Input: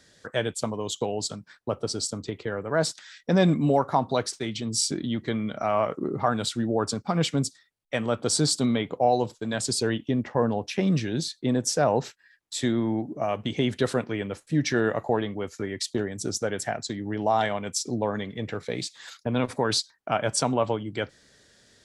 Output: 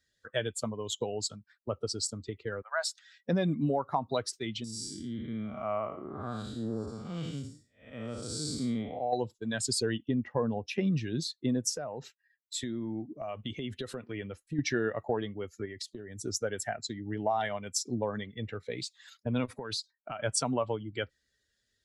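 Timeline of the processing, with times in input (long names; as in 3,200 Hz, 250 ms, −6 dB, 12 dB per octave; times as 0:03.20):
0:02.62–0:03.17: Butterworth high-pass 690 Hz
0:04.64–0:09.13: spectrum smeared in time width 268 ms
0:11.69–0:14.59: downward compressor 16 to 1, threshold −25 dBFS
0:15.65–0:16.25: downward compressor 12 to 1, threshold −29 dBFS
0:19.52–0:20.20: downward compressor 10 to 1, threshold −26 dBFS
whole clip: spectral dynamics exaggerated over time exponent 1.5; downward compressor 6 to 1, threshold −25 dBFS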